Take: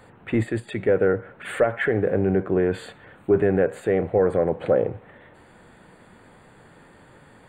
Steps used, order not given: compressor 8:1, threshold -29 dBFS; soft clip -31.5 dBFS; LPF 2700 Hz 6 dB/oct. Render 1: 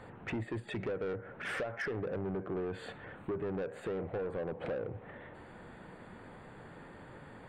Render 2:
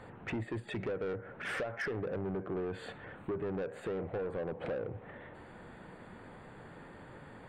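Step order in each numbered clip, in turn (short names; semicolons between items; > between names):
compressor > LPF > soft clip; LPF > compressor > soft clip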